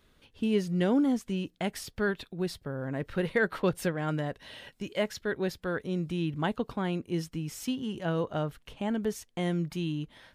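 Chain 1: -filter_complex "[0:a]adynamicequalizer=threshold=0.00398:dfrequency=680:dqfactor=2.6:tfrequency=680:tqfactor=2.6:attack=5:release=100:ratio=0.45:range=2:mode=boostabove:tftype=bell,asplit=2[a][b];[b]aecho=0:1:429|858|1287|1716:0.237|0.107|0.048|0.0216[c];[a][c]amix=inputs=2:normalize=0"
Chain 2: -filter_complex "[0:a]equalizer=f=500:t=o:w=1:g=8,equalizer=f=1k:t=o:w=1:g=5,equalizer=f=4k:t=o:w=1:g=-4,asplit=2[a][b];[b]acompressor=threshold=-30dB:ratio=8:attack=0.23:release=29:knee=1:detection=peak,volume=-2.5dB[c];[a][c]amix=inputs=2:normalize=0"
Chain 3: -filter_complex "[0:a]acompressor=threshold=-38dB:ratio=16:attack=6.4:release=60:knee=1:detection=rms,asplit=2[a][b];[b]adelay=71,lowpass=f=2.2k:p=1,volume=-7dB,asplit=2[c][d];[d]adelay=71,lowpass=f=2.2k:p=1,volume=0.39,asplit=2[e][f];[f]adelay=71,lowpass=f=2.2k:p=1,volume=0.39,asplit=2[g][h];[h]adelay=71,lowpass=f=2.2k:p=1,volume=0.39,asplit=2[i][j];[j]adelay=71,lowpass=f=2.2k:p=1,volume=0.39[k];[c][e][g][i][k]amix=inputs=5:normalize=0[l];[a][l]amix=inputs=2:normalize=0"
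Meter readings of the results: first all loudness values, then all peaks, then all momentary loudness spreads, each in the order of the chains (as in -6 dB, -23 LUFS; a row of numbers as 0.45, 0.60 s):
-31.0, -25.5, -42.5 LUFS; -13.5, -7.5, -26.0 dBFS; 8, 8, 4 LU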